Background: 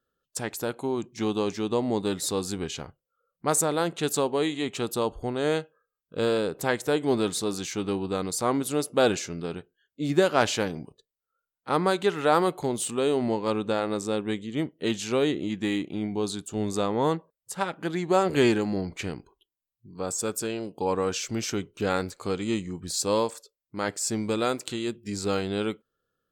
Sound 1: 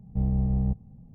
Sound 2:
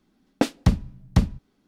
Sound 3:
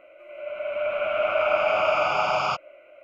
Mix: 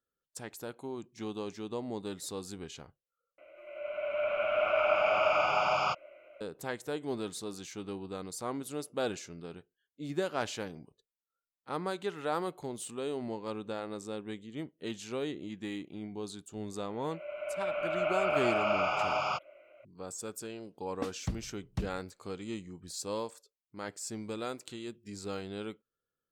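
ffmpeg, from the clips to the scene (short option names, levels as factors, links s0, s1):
-filter_complex "[3:a]asplit=2[s0][s1];[0:a]volume=0.266,asplit=2[s2][s3];[s2]atrim=end=3.384[s4];[s0]atrim=end=3.03,asetpts=PTS-STARTPTS,volume=0.562[s5];[s3]atrim=start=6.406[s6];[s1]atrim=end=3.03,asetpts=PTS-STARTPTS,volume=0.422,afade=t=in:d=0.004:c=hsin,afade=t=out:st=3.026:d=0.004:c=hsin,adelay=16820[s7];[2:a]atrim=end=1.67,asetpts=PTS-STARTPTS,volume=0.15,afade=t=in:d=0.004:c=hsin,afade=t=out:st=1.666:d=0.004:c=hsin,adelay=20610[s8];[s4][s5]acrossfade=d=0.004:c1=hsin:c2=hsin[s9];[s9][s6]acrossfade=d=0.004:c1=hsin:c2=hsin[s10];[s10][s7][s8]amix=inputs=3:normalize=0"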